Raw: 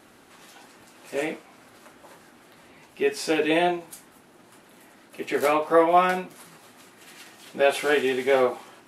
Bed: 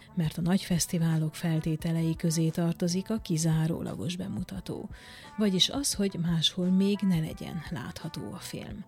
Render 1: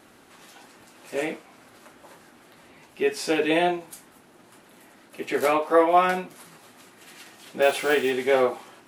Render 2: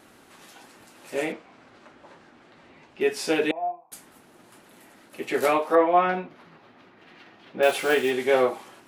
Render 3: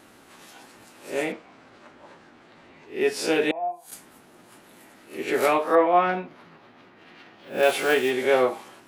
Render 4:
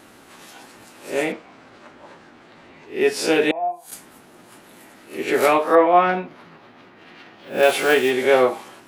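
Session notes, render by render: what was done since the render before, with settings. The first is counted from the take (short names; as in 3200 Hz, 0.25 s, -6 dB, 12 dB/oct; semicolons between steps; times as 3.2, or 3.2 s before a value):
5.58–6.07 brick-wall FIR high-pass 170 Hz; 7.62–8.12 block floating point 5-bit
1.32–3.01 air absorption 120 m; 3.51–3.92 vocal tract filter a; 5.75–7.63 air absorption 280 m
spectral swells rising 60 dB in 0.32 s
gain +4.5 dB; limiter -3 dBFS, peak gain reduction 1 dB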